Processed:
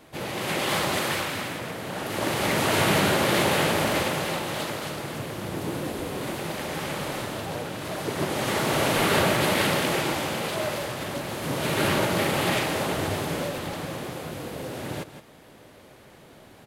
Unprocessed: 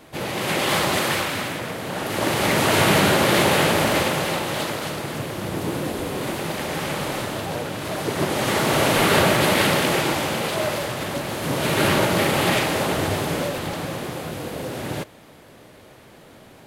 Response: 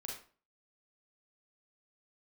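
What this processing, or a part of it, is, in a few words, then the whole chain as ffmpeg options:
ducked delay: -filter_complex "[0:a]asplit=3[a][b][c];[b]adelay=166,volume=-4dB[d];[c]apad=whole_len=742343[e];[d][e]sidechaincompress=threshold=-39dB:ratio=4:attack=22:release=357[f];[a][f]amix=inputs=2:normalize=0,volume=-4.5dB"

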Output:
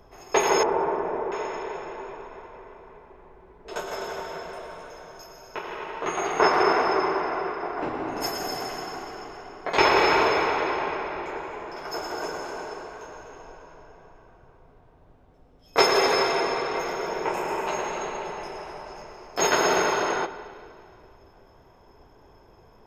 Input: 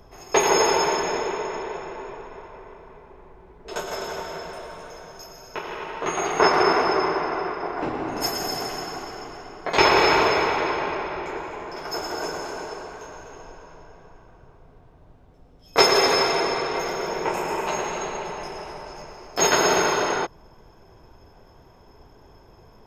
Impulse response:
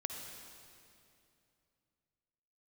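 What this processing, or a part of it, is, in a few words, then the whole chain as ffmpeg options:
filtered reverb send: -filter_complex "[0:a]asplit=2[a][b];[b]highpass=220,lowpass=3.8k[c];[1:a]atrim=start_sample=2205[d];[c][d]afir=irnorm=-1:irlink=0,volume=-6.5dB[e];[a][e]amix=inputs=2:normalize=0,asettb=1/sr,asplit=3[f][g][h];[f]atrim=end=0.634[i];[g]atrim=start=0.63:end=1.32,asetpts=PTS-STARTPTS,afade=t=in:d=0.004:c=qsin,afade=t=out:st=0.686:d=0.004:c=qsin,lowpass=1.1k[j];[h]atrim=start=1.316[k];[i][j]acrossfade=d=0.004:c1=hsin:c2=qsin[l];[l][k]acrossfade=d=0.004:c1=qsin:c2=hsin,volume=-4.5dB"

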